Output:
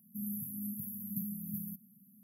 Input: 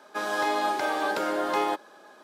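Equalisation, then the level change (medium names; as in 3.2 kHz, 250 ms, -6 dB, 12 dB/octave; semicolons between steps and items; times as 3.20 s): brick-wall FIR band-stop 230–11000 Hz; bass shelf 170 Hz -6 dB; +14.0 dB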